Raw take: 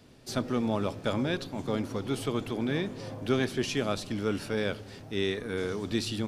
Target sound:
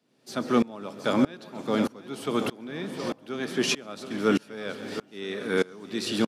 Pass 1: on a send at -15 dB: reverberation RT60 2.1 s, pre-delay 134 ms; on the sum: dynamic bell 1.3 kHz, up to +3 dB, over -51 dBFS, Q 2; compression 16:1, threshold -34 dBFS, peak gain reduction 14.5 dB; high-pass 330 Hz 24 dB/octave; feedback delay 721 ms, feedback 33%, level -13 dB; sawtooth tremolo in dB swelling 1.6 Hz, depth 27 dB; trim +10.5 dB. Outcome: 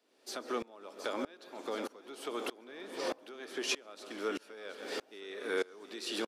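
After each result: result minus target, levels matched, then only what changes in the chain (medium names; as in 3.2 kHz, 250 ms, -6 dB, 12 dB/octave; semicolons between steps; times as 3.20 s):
125 Hz band -15.0 dB; compression: peak gain reduction +14.5 dB
change: high-pass 160 Hz 24 dB/octave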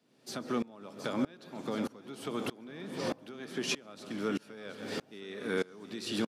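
compression: peak gain reduction +14.5 dB
remove: compression 16:1, threshold -34 dBFS, peak gain reduction 14.5 dB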